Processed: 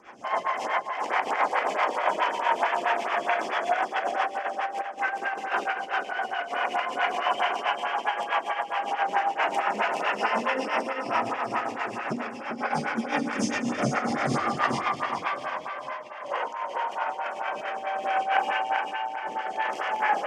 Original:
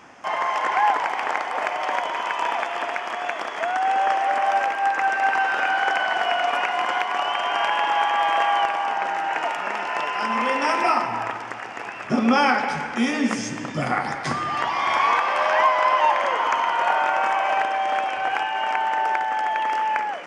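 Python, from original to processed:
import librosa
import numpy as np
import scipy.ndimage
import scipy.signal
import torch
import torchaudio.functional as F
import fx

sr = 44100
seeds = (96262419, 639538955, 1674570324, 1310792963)

y = fx.rev_schroeder(x, sr, rt60_s=0.5, comb_ms=30, drr_db=-3.0)
y = fx.over_compress(y, sr, threshold_db=-20.0, ratio=-0.5)
y = fx.rotary_switch(y, sr, hz=7.5, then_hz=0.6, switch_at_s=15.25)
y = fx.echo_feedback(y, sr, ms=393, feedback_pct=38, wet_db=-4)
y = fx.stagger_phaser(y, sr, hz=4.6)
y = y * librosa.db_to_amplitude(-3.0)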